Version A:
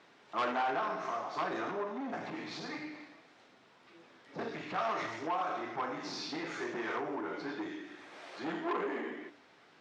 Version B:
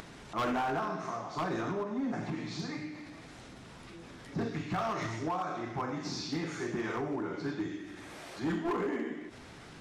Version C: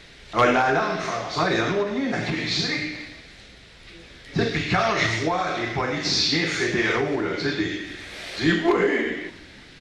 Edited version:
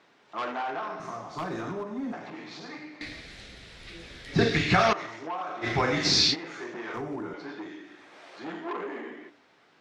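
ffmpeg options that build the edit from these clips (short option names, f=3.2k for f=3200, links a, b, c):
-filter_complex "[1:a]asplit=2[a][b];[2:a]asplit=2[c][d];[0:a]asplit=5[e][f][g][h][i];[e]atrim=end=1.002[j];[a]atrim=start=0.998:end=2.132[k];[f]atrim=start=2.128:end=3.012[l];[c]atrim=start=3.008:end=4.932[m];[g]atrim=start=4.928:end=5.67[n];[d]atrim=start=5.61:end=6.36[o];[h]atrim=start=6.3:end=6.942[p];[b]atrim=start=6.938:end=7.342[q];[i]atrim=start=7.338[r];[j][k]acrossfade=d=0.004:c1=hsin:c2=hsin[s];[s][l]acrossfade=d=0.004:c1=hsin:c2=hsin[t];[t][m]acrossfade=d=0.004:c1=hsin:c2=hsin[u];[u][n]acrossfade=d=0.004:c1=hsin:c2=hsin[v];[v][o]acrossfade=d=0.06:c1=tri:c2=tri[w];[w][p]acrossfade=d=0.06:c1=tri:c2=tri[x];[x][q]acrossfade=d=0.004:c1=hsin:c2=hsin[y];[y][r]acrossfade=d=0.004:c1=hsin:c2=hsin"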